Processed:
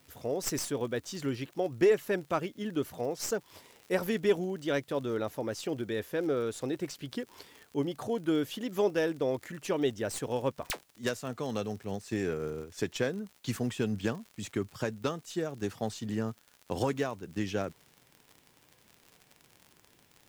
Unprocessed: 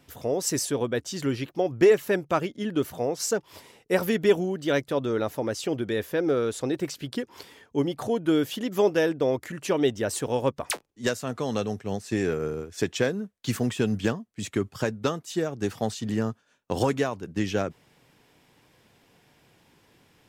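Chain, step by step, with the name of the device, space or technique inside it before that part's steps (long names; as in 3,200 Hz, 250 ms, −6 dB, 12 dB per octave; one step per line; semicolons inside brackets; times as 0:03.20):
record under a worn stylus (stylus tracing distortion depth 0.048 ms; surface crackle 68 per second −34 dBFS; white noise bed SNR 37 dB)
level −6 dB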